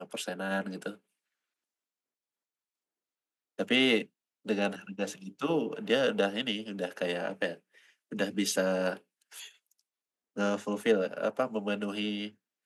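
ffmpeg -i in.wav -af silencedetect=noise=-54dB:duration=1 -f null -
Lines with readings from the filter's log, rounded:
silence_start: 0.97
silence_end: 3.58 | silence_duration: 2.61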